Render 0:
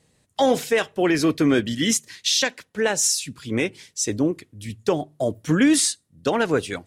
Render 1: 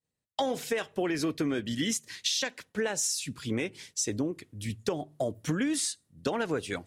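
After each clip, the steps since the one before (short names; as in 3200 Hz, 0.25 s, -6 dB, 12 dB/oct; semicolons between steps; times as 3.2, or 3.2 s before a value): expander -48 dBFS; compressor, threshold -26 dBFS, peak gain reduction 12 dB; gain -1 dB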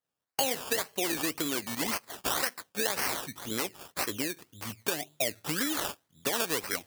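dynamic EQ 9300 Hz, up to -4 dB, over -42 dBFS, Q 0.73; decimation with a swept rate 17×, swing 60% 1.9 Hz; tilt +3 dB/oct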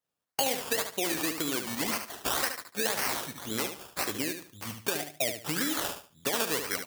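feedback echo 73 ms, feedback 26%, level -8 dB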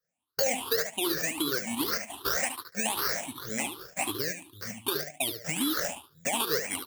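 moving spectral ripple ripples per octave 0.58, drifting +2.6 Hz, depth 21 dB; gain -4 dB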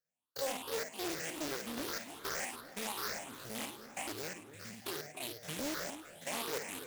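stepped spectrum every 50 ms; echo with dull and thin repeats by turns 0.283 s, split 1700 Hz, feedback 68%, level -12.5 dB; Doppler distortion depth 0.84 ms; gain -7 dB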